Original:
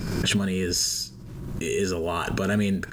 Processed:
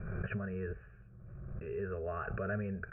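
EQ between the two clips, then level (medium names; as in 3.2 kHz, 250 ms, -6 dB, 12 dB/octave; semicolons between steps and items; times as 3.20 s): steep low-pass 2.4 kHz 96 dB/octave; peaking EQ 73 Hz +3.5 dB 0.77 oct; static phaser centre 1.4 kHz, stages 8; -8.5 dB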